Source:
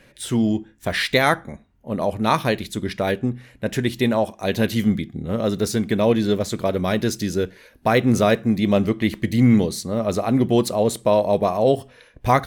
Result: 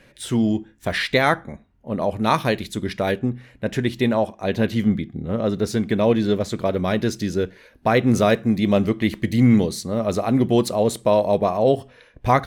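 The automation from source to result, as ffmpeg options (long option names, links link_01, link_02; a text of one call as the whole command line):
ffmpeg -i in.wav -af "asetnsamples=nb_out_samples=441:pad=0,asendcmd='0.98 lowpass f 4300;2.14 lowpass f 11000;3.19 lowpass f 4500;4.27 lowpass f 2500;5.68 lowpass f 4600;8.06 lowpass f 11000;11.36 lowpass f 4800',lowpass=frequency=9000:poles=1" out.wav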